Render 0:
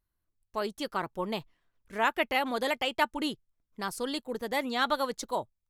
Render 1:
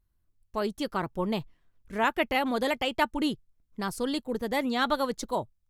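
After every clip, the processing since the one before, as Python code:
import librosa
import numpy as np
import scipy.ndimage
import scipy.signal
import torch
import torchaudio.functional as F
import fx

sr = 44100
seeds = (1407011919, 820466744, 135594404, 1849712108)

y = fx.low_shelf(x, sr, hz=280.0, db=10.5)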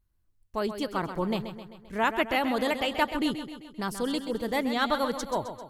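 y = fx.echo_feedback(x, sr, ms=131, feedback_pct=55, wet_db=-10)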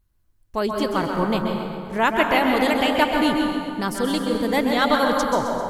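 y = fx.rev_plate(x, sr, seeds[0], rt60_s=2.3, hf_ratio=0.45, predelay_ms=120, drr_db=2.5)
y = y * 10.0 ** (6.0 / 20.0)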